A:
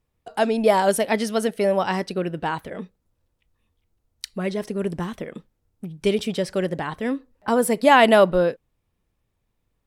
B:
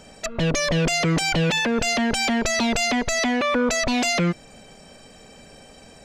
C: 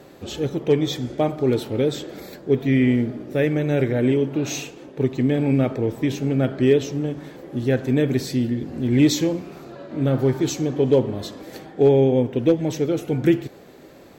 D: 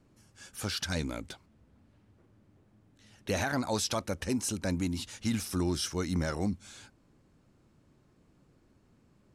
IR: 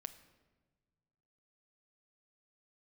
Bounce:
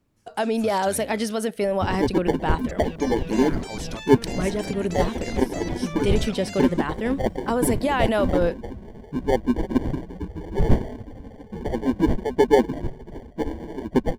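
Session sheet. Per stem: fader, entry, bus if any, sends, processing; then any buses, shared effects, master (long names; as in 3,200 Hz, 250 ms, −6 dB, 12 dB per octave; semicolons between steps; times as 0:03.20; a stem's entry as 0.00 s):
0.0 dB, 0.00 s, no send, brickwall limiter −14.5 dBFS, peak gain reduction 11.5 dB
−16.5 dB, 2.45 s, no send, bit reduction 9 bits
−1.0 dB, 1.60 s, no send, harmonic-percussive split with one part muted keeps percussive; sample-rate reduction 1,300 Hz, jitter 0%; spectral tilt −4 dB per octave
−6.5 dB, 0.00 s, no send, no processing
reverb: not used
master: no processing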